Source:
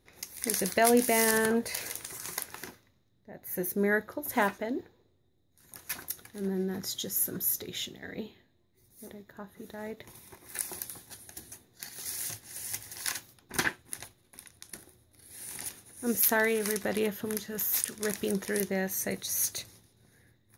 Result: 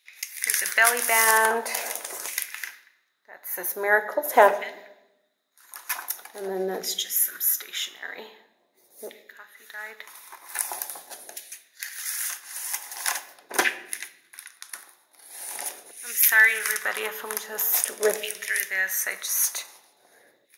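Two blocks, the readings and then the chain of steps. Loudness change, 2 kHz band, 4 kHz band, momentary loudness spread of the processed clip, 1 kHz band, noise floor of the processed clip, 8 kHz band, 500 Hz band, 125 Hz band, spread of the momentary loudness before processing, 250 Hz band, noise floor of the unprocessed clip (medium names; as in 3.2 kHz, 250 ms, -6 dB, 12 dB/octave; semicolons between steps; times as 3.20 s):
+6.5 dB, +10.5 dB, +6.0 dB, 22 LU, +9.5 dB, -66 dBFS, +6.5 dB, +3.0 dB, under -10 dB, 22 LU, -9.5 dB, -69 dBFS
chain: LFO high-pass saw down 0.44 Hz 520–2500 Hz; simulated room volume 320 m³, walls mixed, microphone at 0.31 m; dynamic bell 4.3 kHz, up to -6 dB, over -55 dBFS, Q 5; high-pass 180 Hz 12 dB/octave; bass shelf 330 Hz +10 dB; hum notches 50/100/150/200/250 Hz; trim +6 dB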